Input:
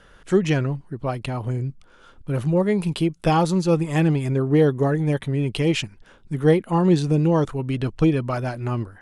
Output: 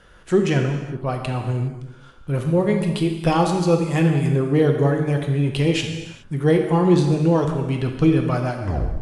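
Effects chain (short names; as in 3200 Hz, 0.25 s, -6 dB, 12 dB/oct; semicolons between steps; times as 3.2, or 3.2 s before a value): tape stop at the end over 0.43 s; non-linear reverb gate 0.44 s falling, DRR 3 dB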